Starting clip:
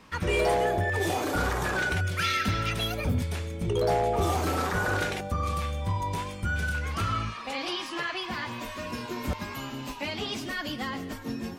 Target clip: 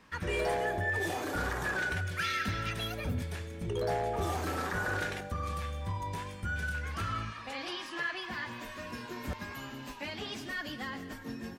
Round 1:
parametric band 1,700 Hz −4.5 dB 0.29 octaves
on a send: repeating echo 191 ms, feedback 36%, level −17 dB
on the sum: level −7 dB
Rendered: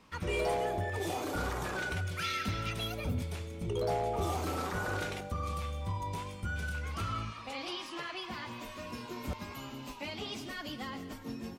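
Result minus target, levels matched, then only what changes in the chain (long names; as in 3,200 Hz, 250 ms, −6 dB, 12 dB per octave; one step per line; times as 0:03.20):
2,000 Hz band −4.0 dB
change: parametric band 1,700 Hz +7 dB 0.29 octaves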